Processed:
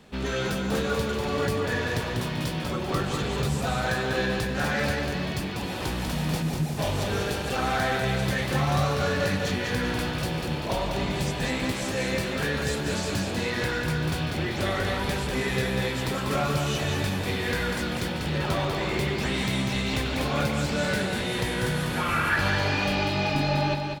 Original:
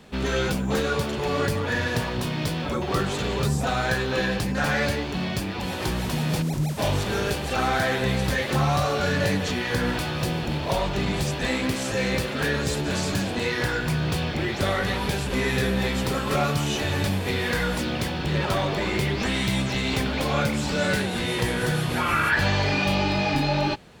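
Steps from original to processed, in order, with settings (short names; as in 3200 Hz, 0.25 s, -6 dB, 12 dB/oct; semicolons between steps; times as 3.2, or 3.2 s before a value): feedback echo 0.194 s, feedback 44%, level -5 dB; gain -3.5 dB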